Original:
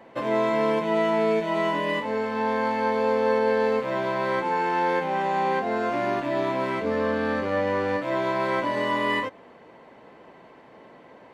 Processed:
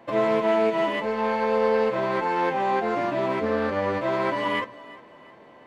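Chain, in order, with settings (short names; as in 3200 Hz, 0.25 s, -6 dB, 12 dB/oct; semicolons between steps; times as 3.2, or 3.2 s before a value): thinning echo 0.706 s, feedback 44%, high-pass 210 Hz, level -18.5 dB; on a send at -11.5 dB: reverb RT60 0.65 s, pre-delay 8 ms; on the sum: time stretch by phase-locked vocoder 0.5×; Doppler distortion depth 0.12 ms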